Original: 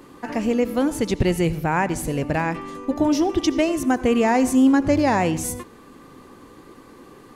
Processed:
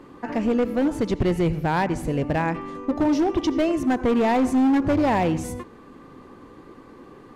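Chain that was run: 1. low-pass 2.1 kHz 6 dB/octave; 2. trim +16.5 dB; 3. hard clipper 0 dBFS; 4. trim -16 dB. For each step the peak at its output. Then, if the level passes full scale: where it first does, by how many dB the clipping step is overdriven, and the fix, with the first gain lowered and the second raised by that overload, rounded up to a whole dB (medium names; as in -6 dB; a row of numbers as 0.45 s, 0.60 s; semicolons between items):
-7.0 dBFS, +9.5 dBFS, 0.0 dBFS, -16.0 dBFS; step 2, 9.5 dB; step 2 +6.5 dB, step 4 -6 dB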